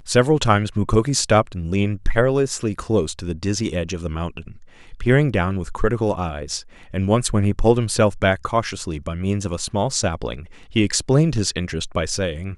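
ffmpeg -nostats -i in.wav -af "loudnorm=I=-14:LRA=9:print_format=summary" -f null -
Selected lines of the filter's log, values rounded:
Input Integrated:    -21.2 LUFS
Input True Peak:      -2.0 dBTP
Input LRA:             2.7 LU
Input Threshold:     -31.3 LUFS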